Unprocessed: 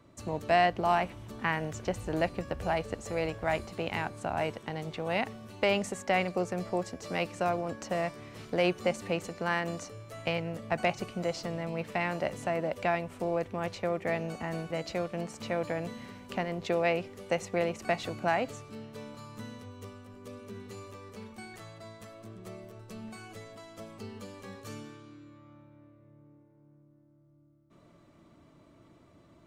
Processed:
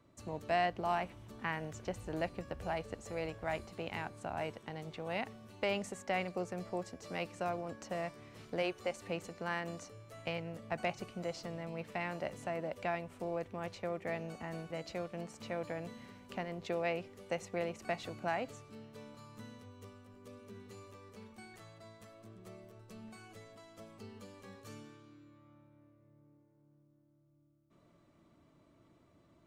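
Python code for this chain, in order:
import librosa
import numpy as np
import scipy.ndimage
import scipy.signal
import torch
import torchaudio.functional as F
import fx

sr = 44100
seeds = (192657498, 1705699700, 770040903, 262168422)

y = fx.peak_eq(x, sr, hz=190.0, db=-10.0, octaves=0.89, at=(8.62, 9.07))
y = F.gain(torch.from_numpy(y), -7.5).numpy()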